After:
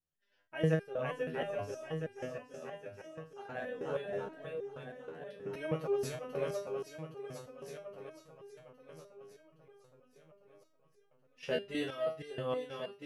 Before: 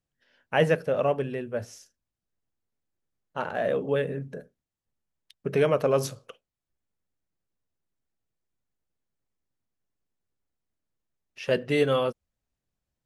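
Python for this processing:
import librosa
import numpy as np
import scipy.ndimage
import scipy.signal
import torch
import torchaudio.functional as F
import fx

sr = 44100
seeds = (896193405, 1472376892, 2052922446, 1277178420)

y = fx.echo_swing(x, sr, ms=816, ratio=1.5, feedback_pct=56, wet_db=-5.0)
y = fx.resonator_held(y, sr, hz=6.3, low_hz=80.0, high_hz=400.0)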